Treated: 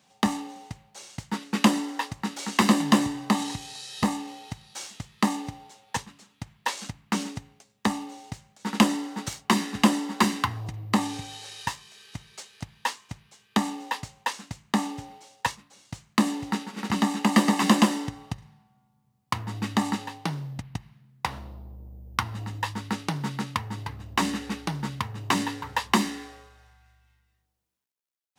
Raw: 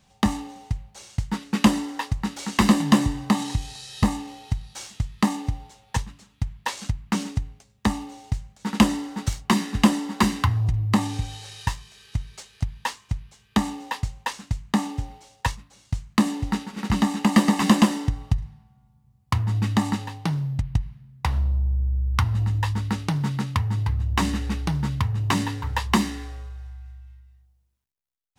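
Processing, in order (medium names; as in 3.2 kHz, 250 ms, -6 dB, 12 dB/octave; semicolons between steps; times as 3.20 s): high-pass 220 Hz 12 dB/octave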